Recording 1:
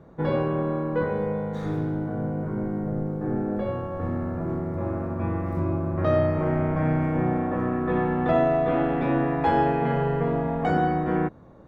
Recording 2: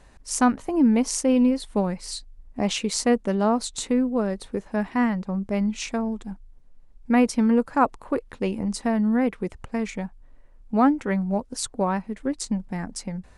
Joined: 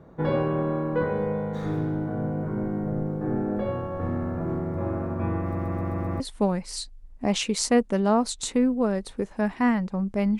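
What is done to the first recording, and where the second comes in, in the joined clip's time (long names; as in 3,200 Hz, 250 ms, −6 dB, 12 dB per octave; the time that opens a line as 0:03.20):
recording 1
0:05.42: stutter in place 0.13 s, 6 plays
0:06.20: continue with recording 2 from 0:01.55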